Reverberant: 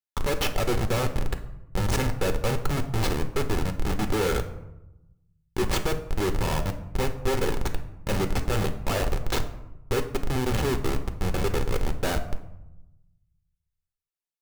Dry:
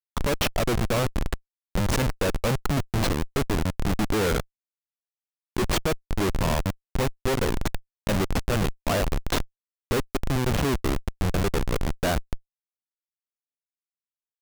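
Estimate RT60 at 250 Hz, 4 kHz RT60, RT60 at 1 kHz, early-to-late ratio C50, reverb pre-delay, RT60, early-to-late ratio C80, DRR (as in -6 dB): 1.2 s, 0.50 s, 0.90 s, 11.0 dB, 5 ms, 0.90 s, 14.5 dB, 6.5 dB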